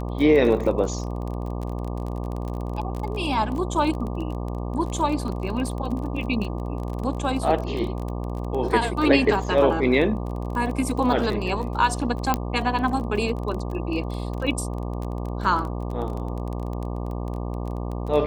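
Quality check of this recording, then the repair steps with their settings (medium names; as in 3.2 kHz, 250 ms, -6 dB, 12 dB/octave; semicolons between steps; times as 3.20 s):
buzz 60 Hz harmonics 20 -29 dBFS
crackle 22 per s -29 dBFS
12.34 s: pop -7 dBFS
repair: de-click; de-hum 60 Hz, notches 20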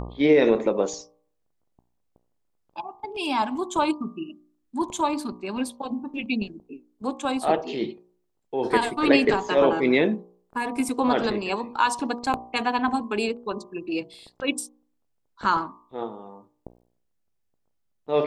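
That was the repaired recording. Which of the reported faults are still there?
12.34 s: pop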